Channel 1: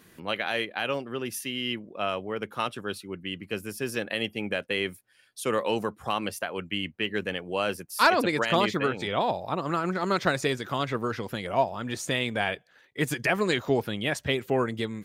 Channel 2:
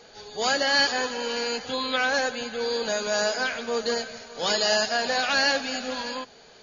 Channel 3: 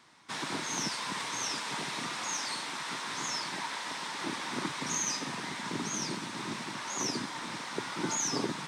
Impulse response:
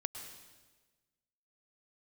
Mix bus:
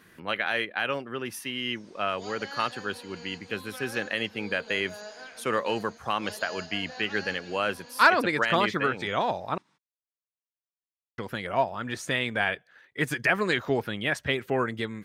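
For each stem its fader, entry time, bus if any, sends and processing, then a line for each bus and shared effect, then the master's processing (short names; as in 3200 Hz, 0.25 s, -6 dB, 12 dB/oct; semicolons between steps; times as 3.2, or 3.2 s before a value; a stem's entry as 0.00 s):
-2.0 dB, 0.00 s, muted 9.58–11.18, no send, no echo send, bell 1600 Hz +6.5 dB 1.1 oct; notch 7100 Hz, Q 22
-18.0 dB, 1.80 s, no send, echo send -11 dB, dry
-20.0 dB, 0.95 s, no send, echo send -6 dB, flange 0.14 Hz, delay 8.9 ms, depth 1.3 ms, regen -60%; limiter -32.5 dBFS, peak gain reduction 9.5 dB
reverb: off
echo: echo 0.153 s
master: high shelf 8600 Hz -4 dB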